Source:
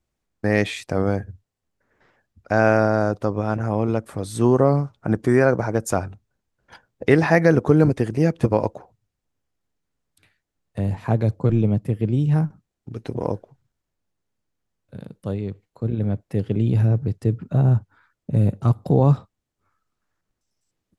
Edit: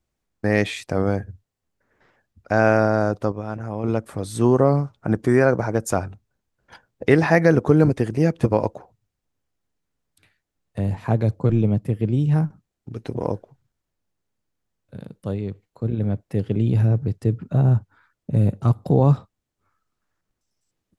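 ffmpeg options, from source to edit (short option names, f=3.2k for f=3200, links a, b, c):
-filter_complex "[0:a]asplit=3[a][b][c];[a]atrim=end=3.322[d];[b]atrim=start=3.318:end=3.842,asetpts=PTS-STARTPTS,volume=-6.5dB[e];[c]atrim=start=3.838[f];[d][e]acrossfade=d=0.004:c1=hsin:c2=hsin[g];[g][f]acrossfade=d=0.004:c1=hsin:c2=hsin"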